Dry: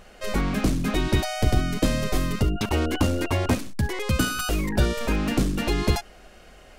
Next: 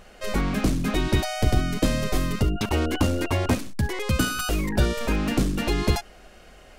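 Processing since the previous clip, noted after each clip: nothing audible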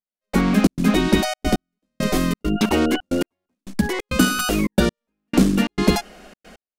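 resonant low shelf 150 Hz -8 dB, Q 3; step gate "...xxx.xxxxx.x." 135 bpm -60 dB; gain +5.5 dB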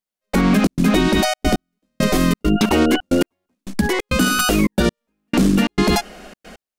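limiter -11.5 dBFS, peak gain reduction 9.5 dB; gain +5 dB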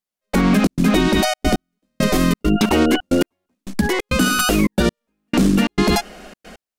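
vibrato 15 Hz 14 cents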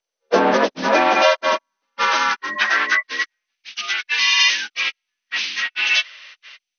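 inharmonic rescaling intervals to 84%; high-pass sweep 480 Hz -> 2500 Hz, 0.33–3.73; gain +5 dB; MP2 48 kbps 24000 Hz

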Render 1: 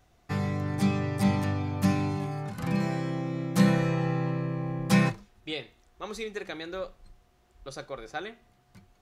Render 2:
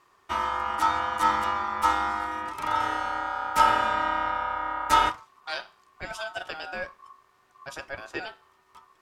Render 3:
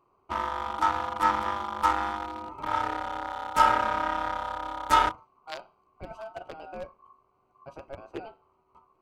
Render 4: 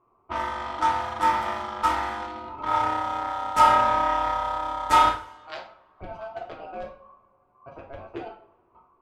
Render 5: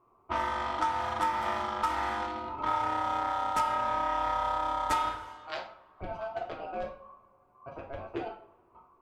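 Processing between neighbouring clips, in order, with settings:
ring modulator 1100 Hz; gain +4 dB
Wiener smoothing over 25 samples
two-slope reverb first 0.45 s, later 2.4 s, from -26 dB, DRR -0.5 dB; low-pass opened by the level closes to 1800 Hz, open at -24.5 dBFS
compressor 16:1, threshold -25 dBFS, peak gain reduction 14.5 dB

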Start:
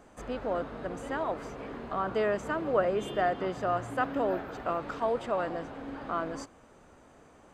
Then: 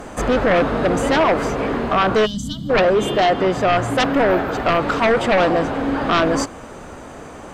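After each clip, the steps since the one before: vocal rider within 4 dB 2 s; sine folder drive 11 dB, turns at -15 dBFS; spectral gain 2.26–2.7, 290–2900 Hz -29 dB; gain +3.5 dB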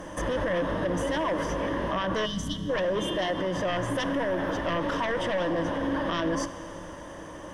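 ripple EQ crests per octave 1.2, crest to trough 11 dB; limiter -14 dBFS, peak gain reduction 10 dB; Schroeder reverb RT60 3 s, combs from 27 ms, DRR 13 dB; gain -7 dB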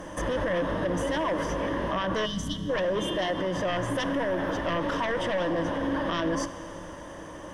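nothing audible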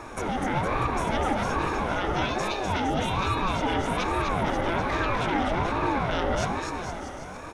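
on a send: bouncing-ball echo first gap 0.25 s, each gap 0.85×, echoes 5; on the sum: ring modulator with a swept carrier 440 Hz, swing 45%, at 1.2 Hz; gain +2.5 dB

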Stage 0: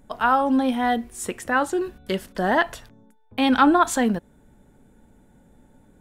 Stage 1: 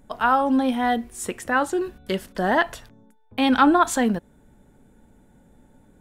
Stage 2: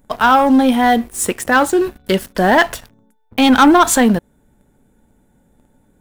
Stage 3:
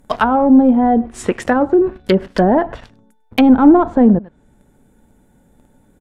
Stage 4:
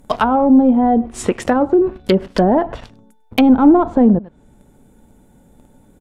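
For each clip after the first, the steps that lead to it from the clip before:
nothing audible
sample leveller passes 2; high shelf 11000 Hz +8.5 dB; gain +2.5 dB
outdoor echo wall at 17 m, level -23 dB; treble ducked by the level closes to 580 Hz, closed at -10.5 dBFS; gain +3 dB
bell 1700 Hz -5 dB 0.56 oct; in parallel at +1 dB: compressor, threshold -21 dBFS, peak gain reduction 15.5 dB; on the sum: gain -3 dB

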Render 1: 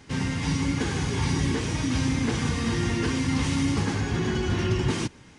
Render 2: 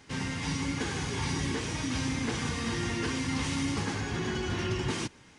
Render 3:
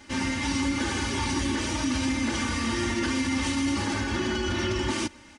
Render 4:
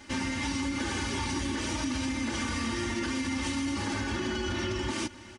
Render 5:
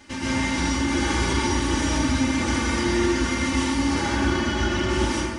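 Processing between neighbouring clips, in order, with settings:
low shelf 360 Hz -6 dB; gain -2.5 dB
comb 3.4 ms, depth 89%; limiter -21.5 dBFS, peak gain reduction 4.5 dB; gain +3.5 dB
compressor, threshold -28 dBFS, peak gain reduction 6 dB; echo 0.623 s -19.5 dB
plate-style reverb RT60 1.5 s, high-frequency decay 0.5×, pre-delay 0.11 s, DRR -8 dB

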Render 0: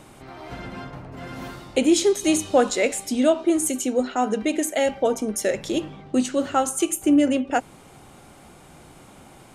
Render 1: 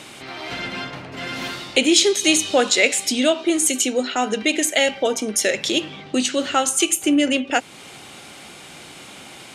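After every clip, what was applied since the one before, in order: in parallel at 0 dB: compressor, threshold -30 dBFS, peak gain reduction 16 dB; on the sum: weighting filter D; gain -1 dB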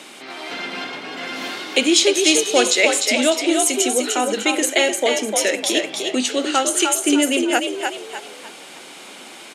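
HPF 210 Hz 24 dB/oct; on a send: frequency-shifting echo 0.301 s, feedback 38%, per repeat +52 Hz, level -4.5 dB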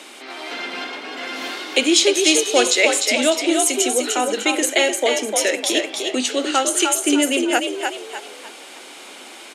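HPF 240 Hz 24 dB/oct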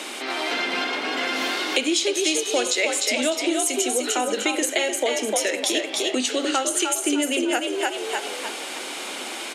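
de-hum 139 Hz, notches 36; compressor 4:1, threshold -29 dBFS, peak gain reduction 15.5 dB; gain +7 dB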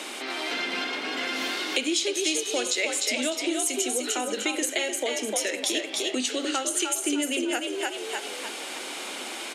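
dynamic EQ 780 Hz, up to -4 dB, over -34 dBFS, Q 0.7; gain -3 dB

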